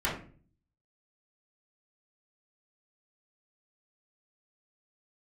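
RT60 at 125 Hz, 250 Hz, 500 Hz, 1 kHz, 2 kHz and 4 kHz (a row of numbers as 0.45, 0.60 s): 0.80, 0.65, 0.50, 0.35, 0.35, 0.30 s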